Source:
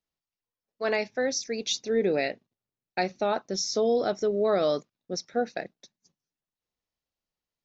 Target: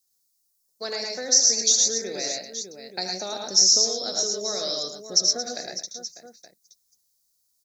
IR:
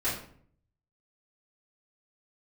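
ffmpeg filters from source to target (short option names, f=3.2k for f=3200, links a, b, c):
-filter_complex "[0:a]aecho=1:1:76|108|124|222|598|873:0.376|0.668|0.376|0.168|0.141|0.112,acrossover=split=510|2200|5100[a][b][c][d];[a]acompressor=threshold=-36dB:ratio=4[e];[b]acompressor=threshold=-33dB:ratio=4[f];[c]acompressor=threshold=-44dB:ratio=4[g];[d]acompressor=threshold=-37dB:ratio=4[h];[e][f][g][h]amix=inputs=4:normalize=0,aexciter=amount=13.5:drive=4.8:freq=4.3k,volume=-2dB"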